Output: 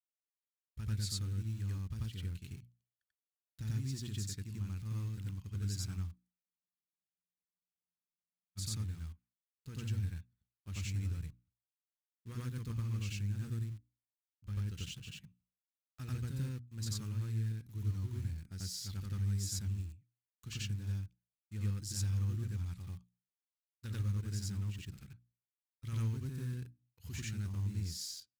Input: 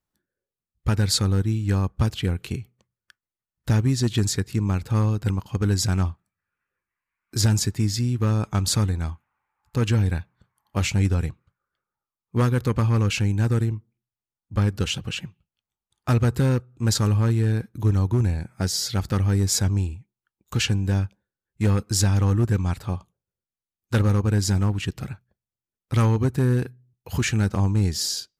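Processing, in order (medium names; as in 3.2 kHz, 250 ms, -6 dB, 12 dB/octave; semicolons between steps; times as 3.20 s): expander -47 dBFS; in parallel at -8.5 dB: bit crusher 5-bit; on the sum: amplifier tone stack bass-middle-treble 6-0-2; hum notches 60/120/180/240/300 Hz; on a send: reverse echo 90 ms -3 dB; on the sum: spectral freeze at 6.42 s, 2.15 s; trim -6 dB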